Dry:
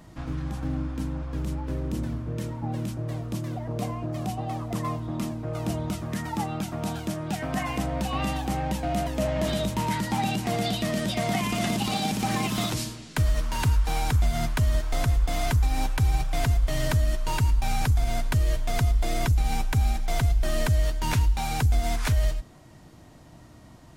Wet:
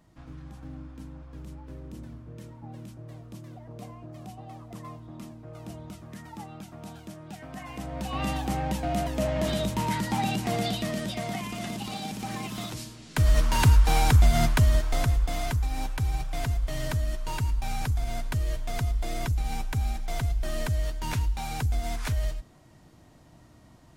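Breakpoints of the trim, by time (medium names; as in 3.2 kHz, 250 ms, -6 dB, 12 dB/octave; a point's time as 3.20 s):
7.60 s -12 dB
8.29 s -1 dB
10.59 s -1 dB
11.51 s -8 dB
12.89 s -8 dB
13.35 s +4.5 dB
14.43 s +4.5 dB
15.61 s -5 dB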